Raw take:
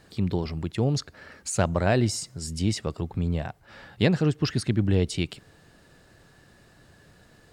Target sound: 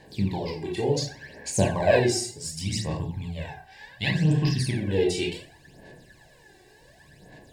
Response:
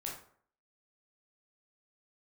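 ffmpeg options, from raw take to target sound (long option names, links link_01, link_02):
-filter_complex "[0:a]asettb=1/sr,asplit=3[link_01][link_02][link_03];[link_01]atrim=end=2.384[link_04];[link_02]atrim=start=2.38:end=4.61,asetpts=PTS-STARTPTS,afade=type=in:duration=0.004:curve=qsin,afade=type=out:start_time=2.226:duration=0.004:curve=qsin,equalizer=frequency=400:width=0.85:gain=-12.5[link_05];[link_03]atrim=start=4.606[link_06];[link_04][link_05]acrossfade=duration=0.004:curve1=hsin:curve2=qsin[link_07];[link_07][link_06]acrossfade=duration=0.004:curve1=qsin:curve2=hsin[link_08];[1:a]atrim=start_sample=2205[link_09];[link_08][link_09]afir=irnorm=-1:irlink=0,aphaser=in_gain=1:out_gain=1:delay=2.6:decay=0.65:speed=0.68:type=sinusoidal,asuperstop=centerf=1300:order=8:qfactor=2.9,lowshelf=frequency=140:gain=-9.5,volume=2dB"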